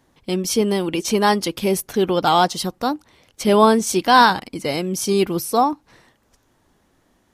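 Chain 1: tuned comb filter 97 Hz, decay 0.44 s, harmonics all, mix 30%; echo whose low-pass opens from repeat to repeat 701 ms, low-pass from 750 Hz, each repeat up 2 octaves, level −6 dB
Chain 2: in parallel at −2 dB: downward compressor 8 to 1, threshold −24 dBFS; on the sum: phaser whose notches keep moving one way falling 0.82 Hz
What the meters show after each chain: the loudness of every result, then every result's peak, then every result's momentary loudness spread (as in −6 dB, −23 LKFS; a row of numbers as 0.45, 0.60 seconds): −21.0, −18.5 LKFS; −2.0, −2.0 dBFS; 10, 9 LU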